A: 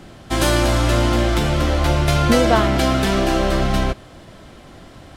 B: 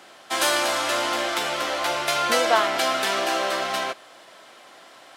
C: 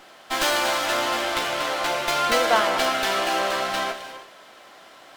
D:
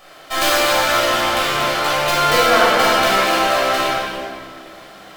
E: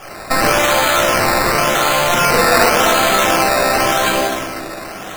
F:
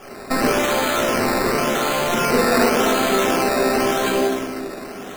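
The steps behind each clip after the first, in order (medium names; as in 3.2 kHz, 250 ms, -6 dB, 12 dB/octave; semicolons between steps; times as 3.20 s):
high-pass 690 Hz 12 dB/octave
reverberation, pre-delay 3 ms, DRR 8 dB; sliding maximum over 3 samples
treble shelf 11 kHz +7.5 dB; simulated room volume 2800 m³, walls mixed, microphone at 6.1 m; trim -1.5 dB
in parallel at 0 dB: compressor with a negative ratio -25 dBFS, ratio -1; on the sum: decimation with a swept rate 11×, swing 60% 0.9 Hz
small resonant body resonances 250/390 Hz, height 14 dB, ringing for 60 ms; trim -7.5 dB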